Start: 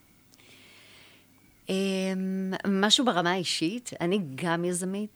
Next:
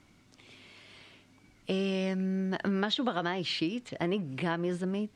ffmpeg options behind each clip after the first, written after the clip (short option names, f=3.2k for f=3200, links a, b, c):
-filter_complex "[0:a]acrossover=split=4500[a][b];[b]acompressor=threshold=-48dB:ratio=4:attack=1:release=60[c];[a][c]amix=inputs=2:normalize=0,lowpass=6.1k,acompressor=threshold=-26dB:ratio=6"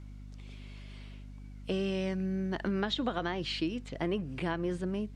-af "equalizer=f=360:t=o:w=1.5:g=2,aeval=exprs='val(0)+0.00794*(sin(2*PI*50*n/s)+sin(2*PI*2*50*n/s)/2+sin(2*PI*3*50*n/s)/3+sin(2*PI*4*50*n/s)/4+sin(2*PI*5*50*n/s)/5)':c=same,volume=-3dB"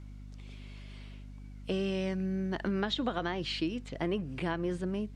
-af anull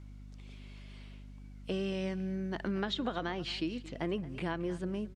-af "aecho=1:1:225:0.126,volume=-2.5dB"